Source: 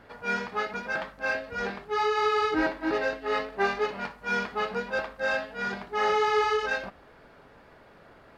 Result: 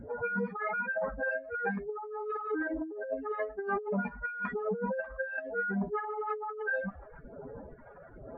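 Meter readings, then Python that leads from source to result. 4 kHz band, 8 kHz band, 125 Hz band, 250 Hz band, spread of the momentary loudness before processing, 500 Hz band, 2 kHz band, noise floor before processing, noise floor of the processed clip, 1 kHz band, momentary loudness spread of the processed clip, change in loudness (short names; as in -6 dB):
under -35 dB, n/a, +3.0 dB, -1.5 dB, 8 LU, -5.5 dB, -5.5 dB, -54 dBFS, -51 dBFS, -8.5 dB, 15 LU, -6.0 dB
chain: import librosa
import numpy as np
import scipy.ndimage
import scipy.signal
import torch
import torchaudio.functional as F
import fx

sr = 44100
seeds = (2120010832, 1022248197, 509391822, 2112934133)

y = fx.spec_expand(x, sr, power=3.1)
y = fx.phaser_stages(y, sr, stages=2, low_hz=240.0, high_hz=4300.0, hz=1.1, feedback_pct=30)
y = fx.over_compress(y, sr, threshold_db=-38.0, ratio=-1.0)
y = y * librosa.db_to_amplitude(3.5)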